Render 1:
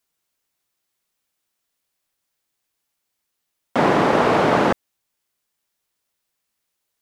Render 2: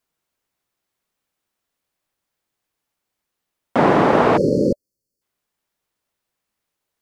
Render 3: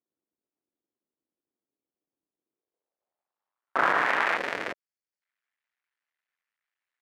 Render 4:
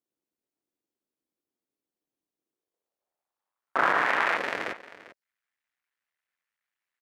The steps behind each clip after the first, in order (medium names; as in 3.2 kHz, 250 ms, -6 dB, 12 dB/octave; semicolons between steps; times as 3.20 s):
spectral selection erased 4.37–5.22 s, 590–4200 Hz; treble shelf 2.3 kHz -8 dB; trim +3 dB
cycle switcher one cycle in 2, muted; band-pass sweep 310 Hz -> 1.9 kHz, 2.40–4.11 s; trim +3.5 dB
delay 396 ms -16.5 dB